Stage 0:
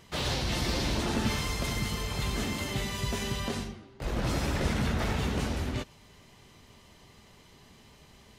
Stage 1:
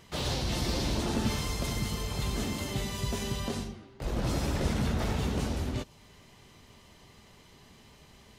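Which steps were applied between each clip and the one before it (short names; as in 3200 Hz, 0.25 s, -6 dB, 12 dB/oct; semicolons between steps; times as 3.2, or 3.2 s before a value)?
dynamic EQ 1900 Hz, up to -5 dB, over -51 dBFS, Q 0.83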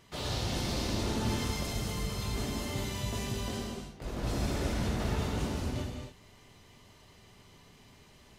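non-linear reverb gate 0.31 s flat, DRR -0.5 dB; gain -5 dB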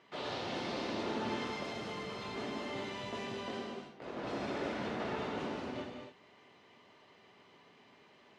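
BPF 290–2900 Hz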